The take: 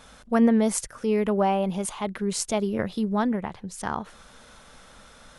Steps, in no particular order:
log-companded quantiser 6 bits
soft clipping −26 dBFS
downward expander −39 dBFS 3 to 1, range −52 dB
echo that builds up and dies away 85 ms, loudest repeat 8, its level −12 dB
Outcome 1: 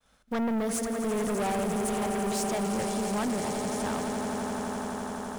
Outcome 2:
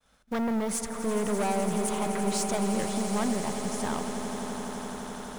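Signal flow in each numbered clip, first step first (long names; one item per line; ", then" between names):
log-companded quantiser, then downward expander, then echo that builds up and dies away, then soft clipping
soft clipping, then log-companded quantiser, then echo that builds up and dies away, then downward expander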